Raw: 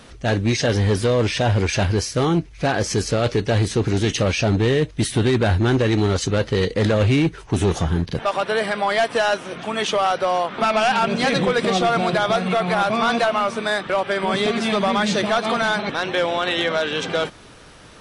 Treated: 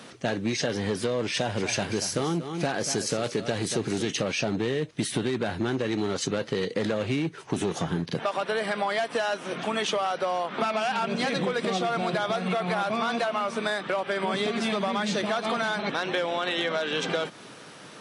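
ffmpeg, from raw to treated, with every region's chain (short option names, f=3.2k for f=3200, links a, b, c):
-filter_complex "[0:a]asettb=1/sr,asplit=3[a][b][c];[a]atrim=end=1.344[d];[b]atrim=start=1.34:end=4.02,asetpts=PTS-STARTPTS,afade=t=in:d=0.004:c=qsin,afade=t=out:st=2.676:d=0.004:c=qsin,highshelf=f=7.4k:g=8.5,aecho=1:1:233:0.237,atrim=end_sample=118188[e];[c]atrim=start=4.016[f];[d][e]acrossfade=d=0.004:c1=hsin:c2=qsin[g];[g][f]acrossfade=d=0.004:c1=qsin:c2=hsin,highpass=f=140:w=0.5412,highpass=f=140:w=1.3066,acompressor=threshold=-24dB:ratio=6"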